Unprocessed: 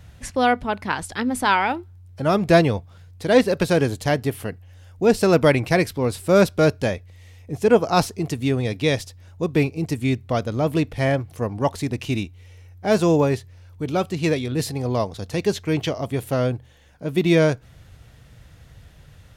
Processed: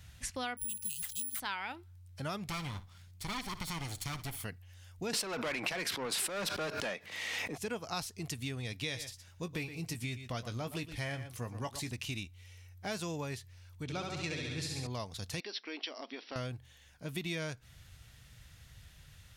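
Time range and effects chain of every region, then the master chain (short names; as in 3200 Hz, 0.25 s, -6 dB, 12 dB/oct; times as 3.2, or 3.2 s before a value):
0.57–1.4 brick-wall FIR band-stop 240–2500 Hz + careless resampling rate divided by 4×, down none, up zero stuff
2.49–4.44 minimum comb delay 0.91 ms + flutter echo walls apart 10.2 m, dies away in 0.2 s + compressor 2:1, threshold -23 dBFS
5.13–7.58 HPF 170 Hz 24 dB/oct + overdrive pedal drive 25 dB, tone 1200 Hz, clips at -3 dBFS + backwards sustainer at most 48 dB/s
8.8–11.91 doubler 17 ms -10.5 dB + echo 0.118 s -13.5 dB
13.83–14.87 LPF 7000 Hz + notch 3000 Hz, Q 18 + flutter echo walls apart 11.5 m, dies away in 1.1 s
15.4–16.36 brick-wall FIR band-pass 220–5800 Hz + compressor 2.5:1, threshold -28 dBFS
whole clip: passive tone stack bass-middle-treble 5-5-5; compressor 4:1, threshold -41 dBFS; gain +5 dB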